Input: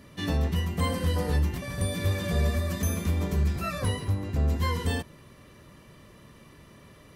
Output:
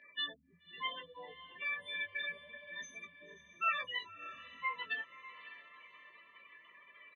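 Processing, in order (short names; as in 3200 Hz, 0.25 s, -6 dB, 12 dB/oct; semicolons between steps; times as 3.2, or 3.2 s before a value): spectral gate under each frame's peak -15 dB strong; in parallel at +1 dB: compressor, threshold -32 dBFS, peak gain reduction 10.5 dB; on the sum: ladder band-pass 2900 Hz, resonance 20%; air absorption 200 m; doubler 18 ms -6.5 dB; on a send: diffused feedback echo 0.582 s, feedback 45%, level -14 dB; on the sum: gain +13 dB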